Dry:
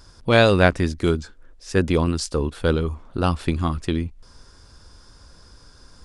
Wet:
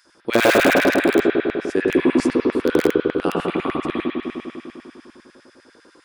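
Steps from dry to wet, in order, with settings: peaking EQ 5 kHz -5.5 dB 1.5 oct; harmonic-percussive split percussive -4 dB; treble shelf 2.4 kHz +2 dB; spring tank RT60 2.8 s, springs 51 ms, chirp 70 ms, DRR -6.5 dB; in parallel at -7 dB: integer overflow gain 5.5 dB; on the sum: LFO high-pass square 10 Hz 310–1900 Hz; trim -5.5 dB

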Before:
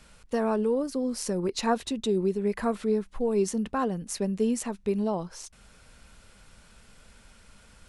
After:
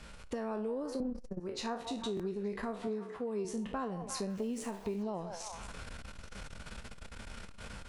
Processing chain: spectral sustain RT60 0.36 s; 1.00–1.40 s: tilt EQ -4.5 dB/octave; level rider gain up to 10 dB; treble shelf 8.3 kHz -12 dB; repeats whose band climbs or falls 175 ms, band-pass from 690 Hz, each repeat 0.7 oct, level -9.5 dB; compression 4:1, threshold -43 dBFS, peak gain reduction 27 dB; 2.87–3.45 s: high-pass 130 Hz; 4.30–5.03 s: small samples zeroed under -55.5 dBFS; buffer glitch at 2.15 s, samples 1024, times 1; transformer saturation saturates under 190 Hz; trim +3.5 dB

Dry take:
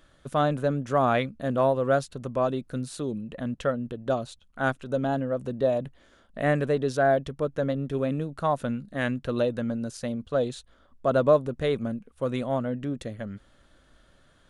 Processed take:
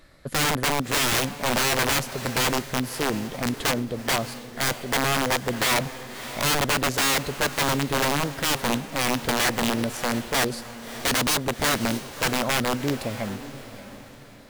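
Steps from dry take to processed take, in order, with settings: integer overflow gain 22 dB; echo that smears into a reverb 612 ms, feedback 41%, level -13 dB; formant shift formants +3 st; trim +5 dB

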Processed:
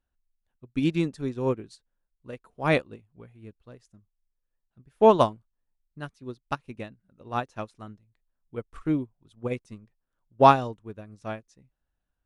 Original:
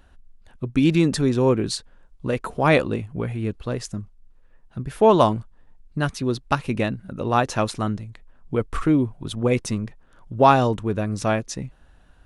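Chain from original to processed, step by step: upward expansion 2.5:1, over -30 dBFS

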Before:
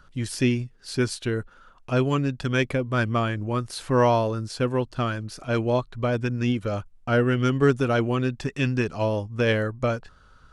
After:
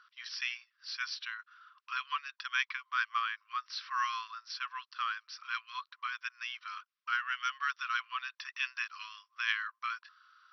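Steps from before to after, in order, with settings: brick-wall FIR band-pass 1–5.9 kHz; trim -3.5 dB

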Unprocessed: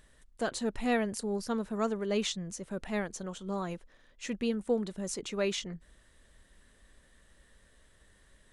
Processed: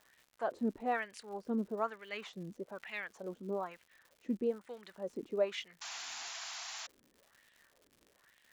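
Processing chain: LFO band-pass sine 1.1 Hz 270–2600 Hz; crackle 180 per s -55 dBFS; painted sound noise, 5.81–6.87 s, 640–7400 Hz -48 dBFS; trim +3.5 dB

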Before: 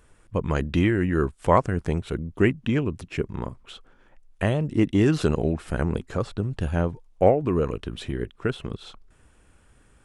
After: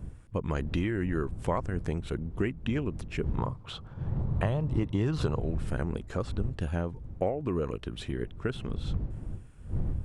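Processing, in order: wind noise 86 Hz -29 dBFS; 3.38–5.40 s: graphic EQ 125/500/1000/4000 Hz +12/+5/+11/+6 dB; compression 6:1, threshold -21 dBFS, peak gain reduction 13 dB; trim -4 dB

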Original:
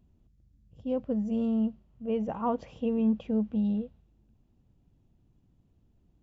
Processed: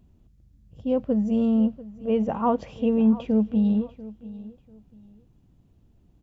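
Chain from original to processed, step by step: feedback delay 691 ms, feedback 25%, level -18 dB; trim +6.5 dB

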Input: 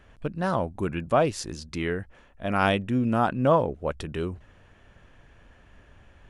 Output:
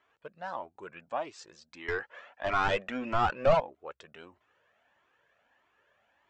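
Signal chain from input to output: high-pass 700 Hz 12 dB/octave; 1.88–3.60 s: overdrive pedal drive 25 dB, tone 3.1 kHz, clips at -9 dBFS; elliptic low-pass 7.8 kHz, stop band 40 dB; tilt EQ -2.5 dB/octave; Shepard-style flanger rising 1.6 Hz; trim -3 dB

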